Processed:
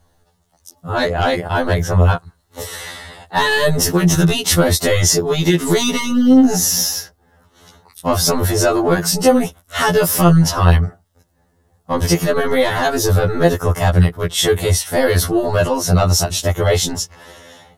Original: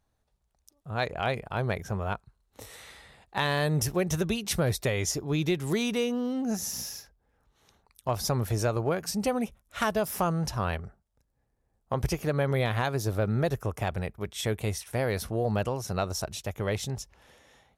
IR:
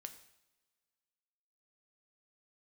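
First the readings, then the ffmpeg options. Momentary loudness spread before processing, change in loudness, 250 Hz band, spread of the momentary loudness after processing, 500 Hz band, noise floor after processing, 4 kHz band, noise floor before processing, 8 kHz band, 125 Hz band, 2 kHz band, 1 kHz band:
9 LU, +14.0 dB, +15.0 dB, 11 LU, +13.5 dB, −61 dBFS, +16.0 dB, −75 dBFS, +17.0 dB, +13.5 dB, +13.5 dB, +13.0 dB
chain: -af "apsyclip=27dB,bandreject=frequency=2400:width=6.2,afftfilt=real='re*2*eq(mod(b,4),0)':imag='im*2*eq(mod(b,4),0)':win_size=2048:overlap=0.75,volume=-6.5dB"

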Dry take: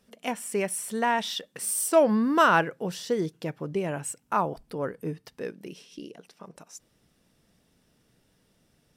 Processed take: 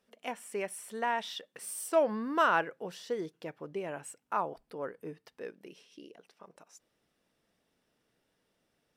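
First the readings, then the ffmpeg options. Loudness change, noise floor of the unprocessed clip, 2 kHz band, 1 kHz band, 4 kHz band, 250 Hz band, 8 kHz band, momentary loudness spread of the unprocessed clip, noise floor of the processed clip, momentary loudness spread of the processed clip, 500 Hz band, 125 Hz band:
−7.0 dB, −68 dBFS, −6.0 dB, −6.0 dB, −8.0 dB, −11.0 dB, −12.0 dB, 22 LU, −78 dBFS, 18 LU, −6.5 dB, −14.5 dB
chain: -af "bass=frequency=250:gain=-11,treble=frequency=4000:gain=-6,volume=-6dB"

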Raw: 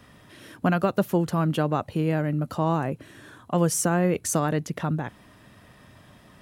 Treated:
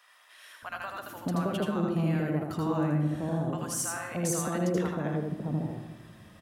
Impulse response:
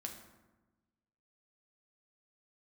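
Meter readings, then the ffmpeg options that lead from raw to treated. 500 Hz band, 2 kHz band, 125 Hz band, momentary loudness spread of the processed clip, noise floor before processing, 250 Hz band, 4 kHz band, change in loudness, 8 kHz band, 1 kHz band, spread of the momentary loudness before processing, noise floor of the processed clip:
−6.0 dB, −5.0 dB, −4.0 dB, 11 LU, −54 dBFS, −4.0 dB, −4.0 dB, −5.5 dB, −4.0 dB, −7.5 dB, 7 LU, −55 dBFS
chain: -filter_complex "[0:a]alimiter=limit=-16dB:level=0:latency=1:release=425,acrossover=split=760[link_01][link_02];[link_01]adelay=620[link_03];[link_03][link_02]amix=inputs=2:normalize=0,asplit=2[link_04][link_05];[1:a]atrim=start_sample=2205,adelay=80[link_06];[link_05][link_06]afir=irnorm=-1:irlink=0,volume=2dB[link_07];[link_04][link_07]amix=inputs=2:normalize=0,volume=-4dB"

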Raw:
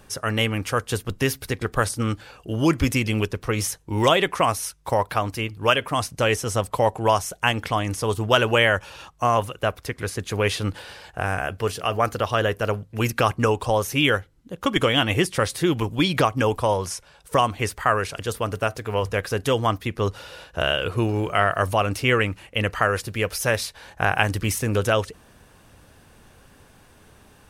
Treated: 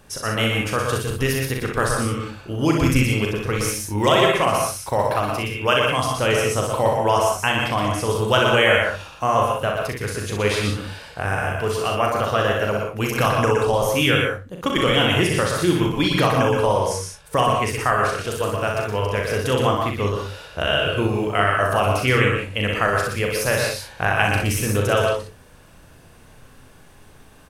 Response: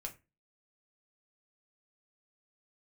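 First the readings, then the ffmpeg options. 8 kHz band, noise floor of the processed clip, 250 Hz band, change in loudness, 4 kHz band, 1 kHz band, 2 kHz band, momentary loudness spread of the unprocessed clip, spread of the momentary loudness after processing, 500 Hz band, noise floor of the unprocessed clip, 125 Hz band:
+2.5 dB, −47 dBFS, +2.5 dB, +2.5 dB, +2.5 dB, +2.5 dB, +3.0 dB, 8 LU, 7 LU, +3.0 dB, −54 dBFS, +2.5 dB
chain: -filter_complex "[0:a]aecho=1:1:39|62:0.531|0.562,asplit=2[link_01][link_02];[1:a]atrim=start_sample=2205,adelay=119[link_03];[link_02][link_03]afir=irnorm=-1:irlink=0,volume=-0.5dB[link_04];[link_01][link_04]amix=inputs=2:normalize=0,volume=-1dB"

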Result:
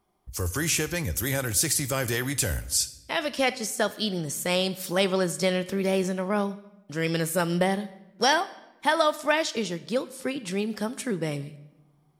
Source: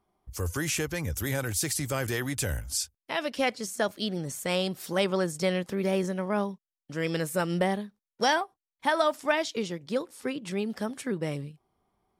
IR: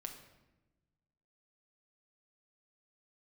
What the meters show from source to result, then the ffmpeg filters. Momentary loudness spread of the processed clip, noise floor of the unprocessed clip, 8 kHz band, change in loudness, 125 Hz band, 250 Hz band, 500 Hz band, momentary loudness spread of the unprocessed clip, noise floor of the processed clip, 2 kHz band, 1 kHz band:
9 LU, below −85 dBFS, +6.0 dB, +3.0 dB, +2.0 dB, +2.0 dB, +2.0 dB, 9 LU, −61 dBFS, +3.0 dB, +2.5 dB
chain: -filter_complex "[0:a]asplit=2[link_01][link_02];[1:a]atrim=start_sample=2205,highshelf=frequency=2100:gain=12[link_03];[link_02][link_03]afir=irnorm=-1:irlink=0,volume=-7dB[link_04];[link_01][link_04]amix=inputs=2:normalize=0"

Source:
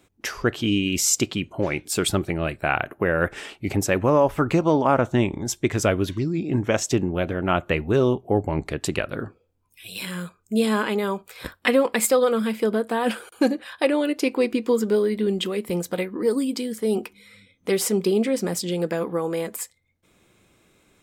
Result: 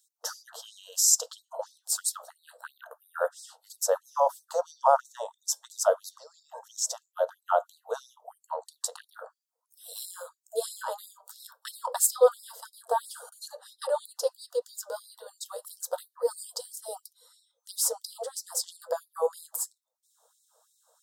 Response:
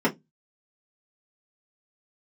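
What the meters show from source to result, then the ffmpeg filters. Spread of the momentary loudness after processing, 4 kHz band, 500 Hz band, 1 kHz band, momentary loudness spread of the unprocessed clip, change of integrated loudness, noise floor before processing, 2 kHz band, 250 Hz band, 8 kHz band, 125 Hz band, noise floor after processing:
21 LU, −7.5 dB, −8.0 dB, −3.5 dB, 9 LU, −6.5 dB, −65 dBFS, −17.5 dB, below −40 dB, 0.0 dB, below −40 dB, −82 dBFS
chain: -filter_complex "[0:a]asuperstop=centerf=2300:order=4:qfactor=0.62,asplit=2[link_01][link_02];[1:a]atrim=start_sample=2205[link_03];[link_02][link_03]afir=irnorm=-1:irlink=0,volume=-21dB[link_04];[link_01][link_04]amix=inputs=2:normalize=0,afftfilt=real='re*gte(b*sr/1024,440*pow(3800/440,0.5+0.5*sin(2*PI*3*pts/sr)))':imag='im*gte(b*sr/1024,440*pow(3800/440,0.5+0.5*sin(2*PI*3*pts/sr)))':win_size=1024:overlap=0.75"

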